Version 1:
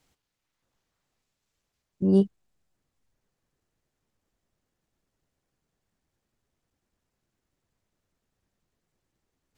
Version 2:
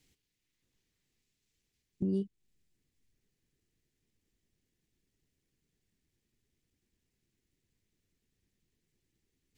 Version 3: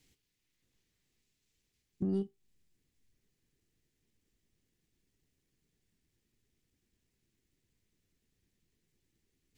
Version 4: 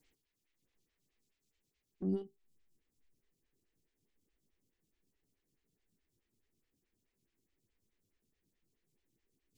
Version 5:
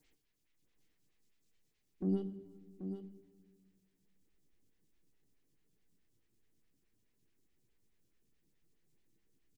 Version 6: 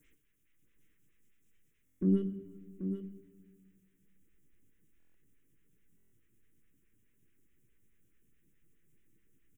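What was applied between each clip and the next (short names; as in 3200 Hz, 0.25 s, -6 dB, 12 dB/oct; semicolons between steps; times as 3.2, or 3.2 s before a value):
band shelf 890 Hz -13 dB; compressor 4:1, threshold -31 dBFS, peak gain reduction 13.5 dB
in parallel at -7 dB: soft clip -35 dBFS, distortion -9 dB; on the sum: resonator 56 Hz, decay 0.2 s, harmonics all, mix 40%
photocell phaser 4.7 Hz
echo 0.784 s -9 dB; shoebox room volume 1400 m³, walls mixed, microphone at 0.48 m; gain +1 dB
fixed phaser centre 1900 Hz, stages 4; stuck buffer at 1.85/4.98/5.96, samples 1024, times 6; gain +7 dB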